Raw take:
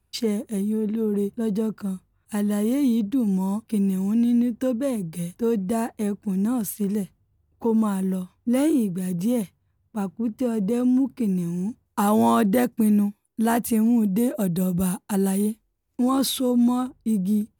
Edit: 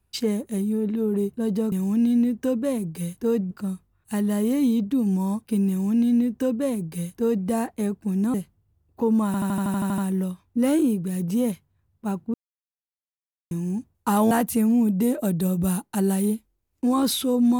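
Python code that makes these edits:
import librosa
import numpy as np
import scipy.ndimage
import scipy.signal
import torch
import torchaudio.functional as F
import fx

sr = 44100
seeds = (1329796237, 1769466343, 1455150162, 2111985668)

y = fx.edit(x, sr, fx.duplicate(start_s=3.9, length_s=1.79, to_s=1.72),
    fx.cut(start_s=6.55, length_s=0.42),
    fx.stutter(start_s=7.89, slice_s=0.08, count=10),
    fx.silence(start_s=10.25, length_s=1.17),
    fx.cut(start_s=12.22, length_s=1.25), tone=tone)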